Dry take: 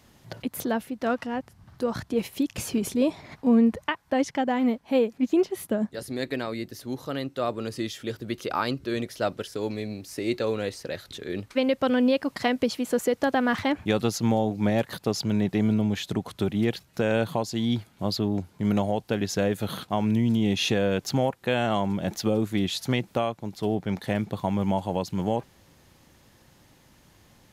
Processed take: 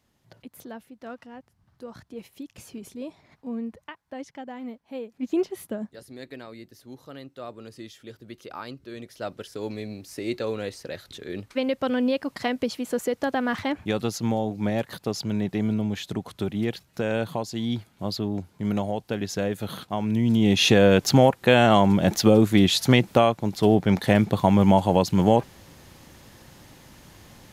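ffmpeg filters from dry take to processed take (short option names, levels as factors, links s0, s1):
-af "volume=6.68,afade=t=in:st=5.1:d=0.27:silence=0.281838,afade=t=out:st=5.37:d=0.68:silence=0.375837,afade=t=in:st=8.96:d=0.75:silence=0.375837,afade=t=in:st=20.08:d=0.77:silence=0.316228"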